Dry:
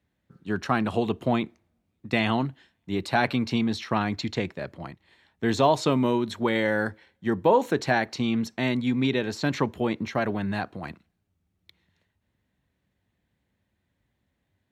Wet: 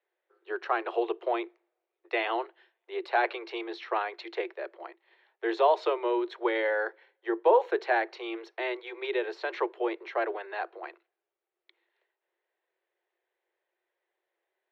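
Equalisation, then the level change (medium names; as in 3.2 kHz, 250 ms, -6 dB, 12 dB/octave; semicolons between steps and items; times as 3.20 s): Chebyshev high-pass 340 Hz, order 10; distance through air 320 m; 0.0 dB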